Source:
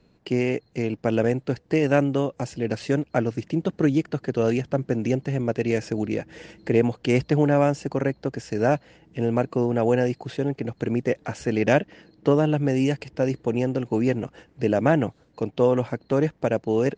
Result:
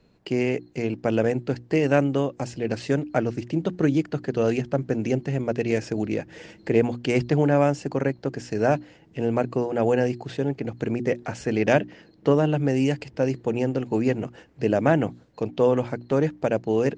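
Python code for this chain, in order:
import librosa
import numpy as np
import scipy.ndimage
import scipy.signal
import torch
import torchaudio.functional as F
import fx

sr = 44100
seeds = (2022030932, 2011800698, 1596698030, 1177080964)

y = fx.hum_notches(x, sr, base_hz=60, count=6)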